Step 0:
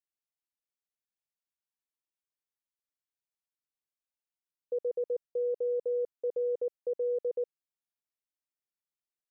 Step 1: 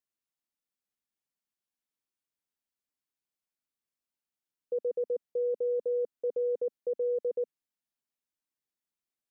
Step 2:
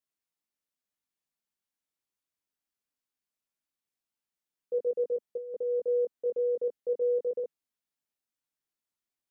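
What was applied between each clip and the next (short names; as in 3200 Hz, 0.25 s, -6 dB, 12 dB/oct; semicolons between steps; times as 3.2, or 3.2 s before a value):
bell 240 Hz +7 dB 0.82 oct
chorus 0.23 Hz, delay 18 ms, depth 2.9 ms; gain +3 dB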